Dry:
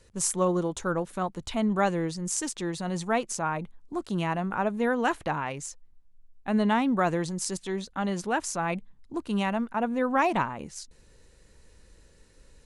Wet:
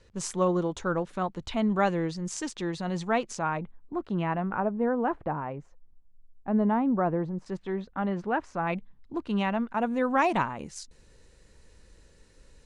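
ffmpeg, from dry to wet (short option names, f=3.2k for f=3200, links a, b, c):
-af "asetnsamples=n=441:p=0,asendcmd='3.59 lowpass f 2100;4.6 lowpass f 1000;7.46 lowpass f 1800;8.67 lowpass f 3900;9.72 lowpass f 9400',lowpass=5.1k"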